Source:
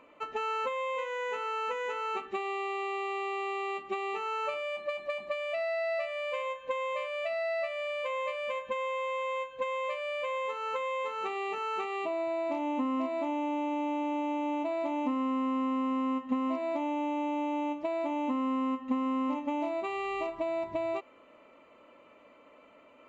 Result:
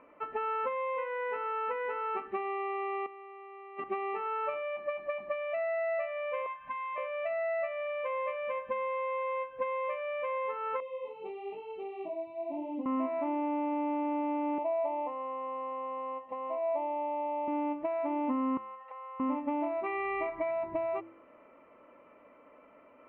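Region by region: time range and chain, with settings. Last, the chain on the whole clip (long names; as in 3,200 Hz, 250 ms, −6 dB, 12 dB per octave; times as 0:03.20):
0:03.06–0:03.84: high-pass filter 140 Hz 24 dB per octave + compressor whose output falls as the input rises −42 dBFS, ratio −0.5
0:06.46–0:06.98: Chebyshev band-stop filter 270–620 Hz, order 4 + upward compression, threshold −43 dBFS
0:10.80–0:12.86: chorus effect 1 Hz, delay 17.5 ms, depth 7.5 ms + Butterworth band-reject 1,500 Hz, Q 0.65 + high-shelf EQ 4,600 Hz +7 dB
0:14.58–0:17.48: high-pass filter 150 Hz 6 dB per octave + parametric band 1,000 Hz +4 dB 1.8 octaves + phaser with its sweep stopped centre 600 Hz, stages 4
0:18.57–0:19.20: Butterworth high-pass 530 Hz 48 dB per octave + downward compressor 5 to 1, threshold −42 dBFS
0:19.86–0:20.51: parametric band 2,200 Hz +12 dB 0.4 octaves + notch filter 2,600 Hz, Q 6.8
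whole clip: low-pass filter 2,200 Hz 24 dB per octave; hum removal 110.2 Hz, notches 3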